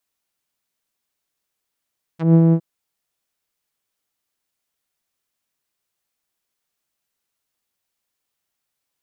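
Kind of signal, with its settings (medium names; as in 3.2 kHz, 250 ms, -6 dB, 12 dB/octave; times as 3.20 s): synth note saw E3 12 dB/octave, low-pass 380 Hz, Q 0.82, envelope 4.5 oct, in 0.05 s, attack 152 ms, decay 0.07 s, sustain -3 dB, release 0.07 s, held 0.34 s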